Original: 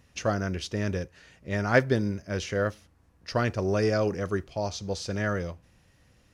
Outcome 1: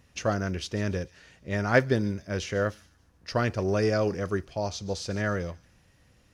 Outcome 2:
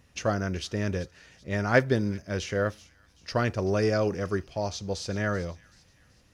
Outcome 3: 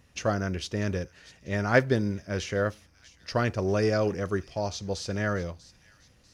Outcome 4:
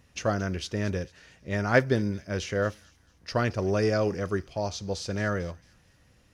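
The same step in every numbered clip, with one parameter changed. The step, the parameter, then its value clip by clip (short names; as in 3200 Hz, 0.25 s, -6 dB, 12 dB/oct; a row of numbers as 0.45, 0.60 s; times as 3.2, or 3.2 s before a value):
thin delay, time: 0.145, 0.382, 0.643, 0.224 s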